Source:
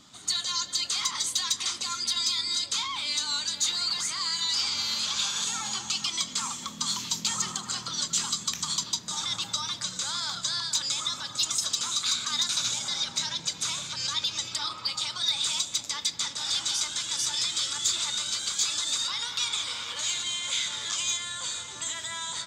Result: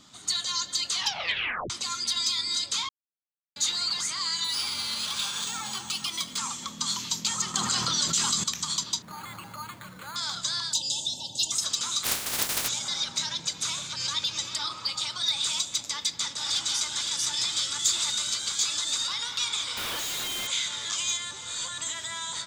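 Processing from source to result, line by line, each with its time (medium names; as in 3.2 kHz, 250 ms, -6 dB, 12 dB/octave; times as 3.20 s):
0.93 s: tape stop 0.77 s
2.89–3.56 s: mute
4.44–6.38 s: decimation joined by straight lines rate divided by 3×
7.54–8.44 s: level flattener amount 70%
9.02–10.16 s: careless resampling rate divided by 8×, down filtered, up hold
10.73–11.52 s: brick-wall FIR band-stop 960–2600 Hz
12.03–12.67 s: spectral contrast reduction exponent 0.1
13.64–14.25 s: echo throw 360 ms, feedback 45%, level -12.5 dB
15.91–16.58 s: echo throw 510 ms, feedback 80%, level -7.5 dB
17.79–18.34 s: treble shelf 8.7 kHz +6.5 dB
19.77–20.47 s: Schmitt trigger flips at -43.5 dBFS
21.31–21.78 s: reverse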